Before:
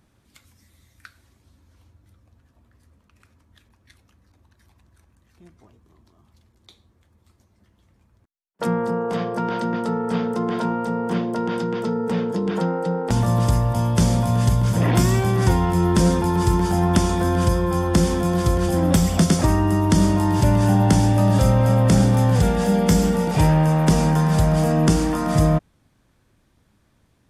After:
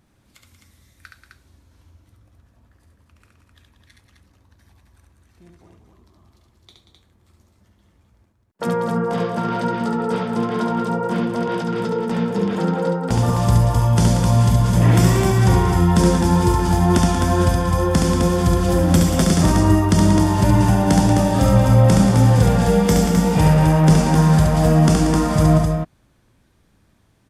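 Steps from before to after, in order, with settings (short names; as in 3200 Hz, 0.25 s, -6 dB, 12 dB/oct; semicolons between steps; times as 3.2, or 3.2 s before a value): vibrato 2.2 Hz 19 cents; tapped delay 70/184/259 ms -3.5/-9.5/-5.5 dB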